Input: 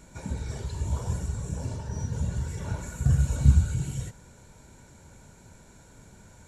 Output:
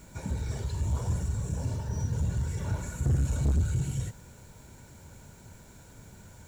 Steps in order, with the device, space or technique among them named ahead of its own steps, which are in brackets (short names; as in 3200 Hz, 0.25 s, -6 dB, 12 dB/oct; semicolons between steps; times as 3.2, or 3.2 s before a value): open-reel tape (soft clip -23 dBFS, distortion -6 dB; bell 100 Hz +3.5 dB 1.01 oct; white noise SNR 34 dB)